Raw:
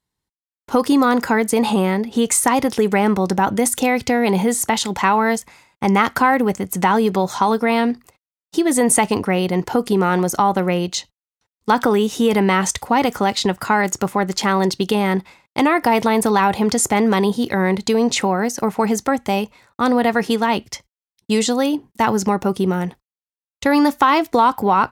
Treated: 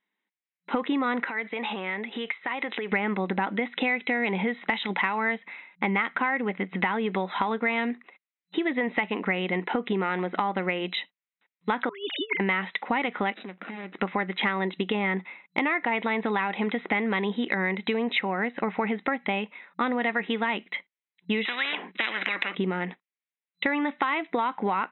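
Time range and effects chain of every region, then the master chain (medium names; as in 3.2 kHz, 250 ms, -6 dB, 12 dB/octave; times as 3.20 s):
1.29–2.92 s: high-pass 520 Hz 6 dB/octave + compression 12:1, threshold -25 dBFS
11.89–12.40 s: formants replaced by sine waves + high-pass 680 Hz + compressor with a negative ratio -29 dBFS, ratio -0.5
13.34–13.94 s: median filter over 41 samples + compression 8:1, threshold -32 dBFS
14.65–15.63 s: low-pass 3 kHz 6 dB/octave + band-stop 1.6 kHz, Q 13
21.45–22.55 s: de-esser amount 50% + distance through air 160 m + spectrum-flattening compressor 10:1
whole clip: FFT band-pass 180–4000 Hz; peaking EQ 2.1 kHz +13 dB 0.77 oct; compression, threshold -20 dBFS; trim -3.5 dB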